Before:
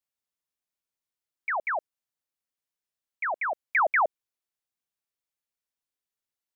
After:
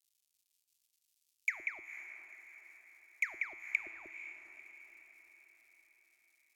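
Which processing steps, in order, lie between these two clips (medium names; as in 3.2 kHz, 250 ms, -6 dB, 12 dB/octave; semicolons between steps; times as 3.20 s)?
companding laws mixed up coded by mu; low-pass that closes with the level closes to 380 Hz, closed at -23 dBFS; FFT filter 100 Hz 0 dB, 150 Hz -18 dB, 360 Hz 0 dB, 520 Hz -29 dB, 930 Hz -24 dB, 1.5 kHz -14 dB, 2.5 kHz +6 dB, 3.6 kHz +9 dB, 5.9 kHz +12 dB; in parallel at -2 dB: compression, threshold -29 dBFS, peak gain reduction 6 dB; on the sum: feedback comb 110 Hz, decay 1.6 s, mix 70%; on a send: echo that smears into a reverb 486 ms, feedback 52%, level -11 dB; on the sum: trim +4.5 dB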